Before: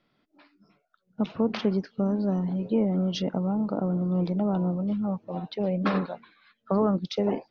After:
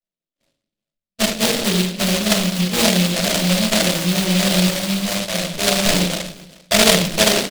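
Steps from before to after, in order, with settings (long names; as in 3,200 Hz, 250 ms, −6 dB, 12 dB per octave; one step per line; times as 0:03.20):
tape wow and flutter 110 cents
sample-rate reduction 1,300 Hz, jitter 0%
graphic EQ with 15 bands 100 Hz −12 dB, 630 Hz +12 dB, 2,500 Hz +6 dB
noise gate −47 dBFS, range −32 dB
low-pass that shuts in the quiet parts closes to 660 Hz
single-tap delay 395 ms −22 dB
rectangular room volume 610 cubic metres, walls furnished, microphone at 6.1 metres
short delay modulated by noise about 3,300 Hz, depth 0.28 ms
level −4.5 dB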